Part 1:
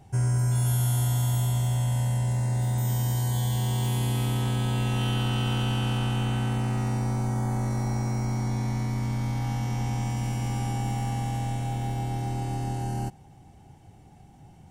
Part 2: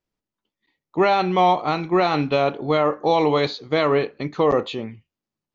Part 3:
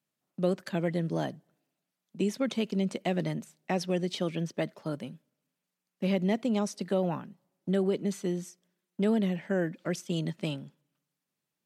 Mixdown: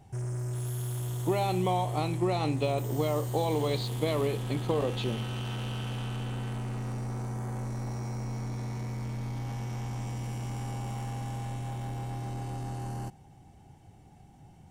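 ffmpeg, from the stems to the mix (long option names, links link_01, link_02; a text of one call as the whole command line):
ffmpeg -i stem1.wav -i stem2.wav -filter_complex "[0:a]asoftclip=type=tanh:threshold=-28.5dB,volume=-3dB[link_01];[1:a]equalizer=frequency=1500:width_type=o:width=0.69:gain=-13,acompressor=threshold=-21dB:ratio=6,adelay=300,volume=-4.5dB[link_02];[link_01][link_02]amix=inputs=2:normalize=0" out.wav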